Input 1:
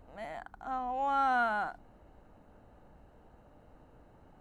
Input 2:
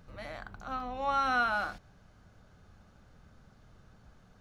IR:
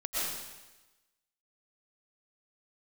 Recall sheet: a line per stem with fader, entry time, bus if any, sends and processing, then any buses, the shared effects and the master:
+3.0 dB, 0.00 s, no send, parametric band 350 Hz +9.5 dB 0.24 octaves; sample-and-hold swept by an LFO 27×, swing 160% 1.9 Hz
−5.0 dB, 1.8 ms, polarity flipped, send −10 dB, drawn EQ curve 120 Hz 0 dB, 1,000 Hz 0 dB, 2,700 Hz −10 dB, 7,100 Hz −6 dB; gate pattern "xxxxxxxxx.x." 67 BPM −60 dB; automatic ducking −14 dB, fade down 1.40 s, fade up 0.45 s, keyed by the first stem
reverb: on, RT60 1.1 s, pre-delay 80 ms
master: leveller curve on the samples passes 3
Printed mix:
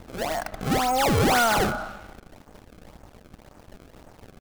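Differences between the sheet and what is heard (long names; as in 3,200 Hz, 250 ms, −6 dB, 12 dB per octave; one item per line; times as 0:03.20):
stem 1: missing parametric band 350 Hz +9.5 dB 0.24 octaves
stem 2: polarity flipped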